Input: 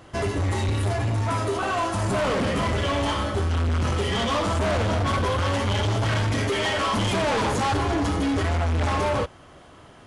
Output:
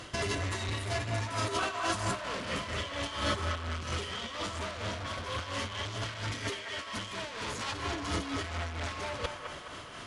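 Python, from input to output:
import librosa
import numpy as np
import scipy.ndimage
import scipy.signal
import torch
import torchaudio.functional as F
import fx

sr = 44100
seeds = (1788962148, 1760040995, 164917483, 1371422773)

p1 = fx.peak_eq(x, sr, hz=4600.0, db=11.0, octaves=2.9)
p2 = fx.notch(p1, sr, hz=810.0, q=12.0)
p3 = fx.over_compress(p2, sr, threshold_db=-26.0, ratio=-0.5)
p4 = p3 * (1.0 - 0.51 / 2.0 + 0.51 / 2.0 * np.cos(2.0 * np.pi * 4.3 * (np.arange(len(p3)) / sr)))
p5 = p4 + fx.echo_wet_bandpass(p4, sr, ms=210, feedback_pct=49, hz=1200.0, wet_db=-3.5, dry=0)
y = F.gain(torch.from_numpy(p5), -5.5).numpy()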